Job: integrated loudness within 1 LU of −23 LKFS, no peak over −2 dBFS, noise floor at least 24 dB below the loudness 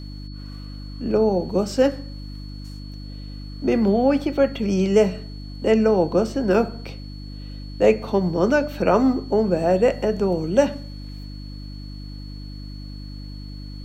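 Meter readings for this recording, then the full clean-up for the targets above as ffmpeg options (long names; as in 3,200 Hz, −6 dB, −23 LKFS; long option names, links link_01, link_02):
mains hum 50 Hz; hum harmonics up to 300 Hz; level of the hum −33 dBFS; interfering tone 4,400 Hz; level of the tone −45 dBFS; integrated loudness −20.5 LKFS; sample peak −4.5 dBFS; target loudness −23.0 LKFS
→ -af "bandreject=frequency=50:width_type=h:width=4,bandreject=frequency=100:width_type=h:width=4,bandreject=frequency=150:width_type=h:width=4,bandreject=frequency=200:width_type=h:width=4,bandreject=frequency=250:width_type=h:width=4,bandreject=frequency=300:width_type=h:width=4"
-af "bandreject=frequency=4400:width=30"
-af "volume=-2.5dB"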